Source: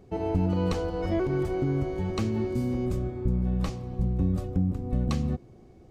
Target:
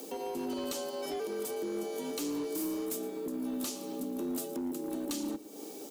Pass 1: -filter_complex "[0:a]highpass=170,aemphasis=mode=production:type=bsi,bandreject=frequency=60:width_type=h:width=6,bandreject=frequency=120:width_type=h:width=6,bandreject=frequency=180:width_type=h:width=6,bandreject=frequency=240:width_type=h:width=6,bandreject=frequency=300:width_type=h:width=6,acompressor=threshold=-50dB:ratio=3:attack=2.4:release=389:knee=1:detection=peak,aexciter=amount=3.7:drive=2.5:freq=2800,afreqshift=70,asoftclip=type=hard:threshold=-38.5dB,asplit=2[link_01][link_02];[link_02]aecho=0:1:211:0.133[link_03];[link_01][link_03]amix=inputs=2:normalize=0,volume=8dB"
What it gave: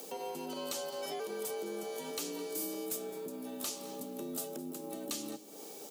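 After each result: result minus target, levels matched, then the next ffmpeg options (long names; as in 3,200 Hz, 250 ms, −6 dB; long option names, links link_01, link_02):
echo 96 ms late; 250 Hz band −5.0 dB
-filter_complex "[0:a]highpass=170,aemphasis=mode=production:type=bsi,bandreject=frequency=60:width_type=h:width=6,bandreject=frequency=120:width_type=h:width=6,bandreject=frequency=180:width_type=h:width=6,bandreject=frequency=240:width_type=h:width=6,bandreject=frequency=300:width_type=h:width=6,acompressor=threshold=-50dB:ratio=3:attack=2.4:release=389:knee=1:detection=peak,aexciter=amount=3.7:drive=2.5:freq=2800,afreqshift=70,asoftclip=type=hard:threshold=-38.5dB,asplit=2[link_01][link_02];[link_02]aecho=0:1:115:0.133[link_03];[link_01][link_03]amix=inputs=2:normalize=0,volume=8dB"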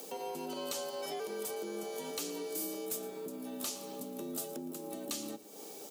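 250 Hz band −5.0 dB
-filter_complex "[0:a]highpass=170,aemphasis=mode=production:type=bsi,bandreject=frequency=60:width_type=h:width=6,bandreject=frequency=120:width_type=h:width=6,bandreject=frequency=180:width_type=h:width=6,bandreject=frequency=240:width_type=h:width=6,bandreject=frequency=300:width_type=h:width=6,acompressor=threshold=-50dB:ratio=3:attack=2.4:release=389:knee=1:detection=peak,equalizer=frequency=220:width=1.4:gain=11,aexciter=amount=3.7:drive=2.5:freq=2800,afreqshift=70,asoftclip=type=hard:threshold=-38.5dB,asplit=2[link_01][link_02];[link_02]aecho=0:1:115:0.133[link_03];[link_01][link_03]amix=inputs=2:normalize=0,volume=8dB"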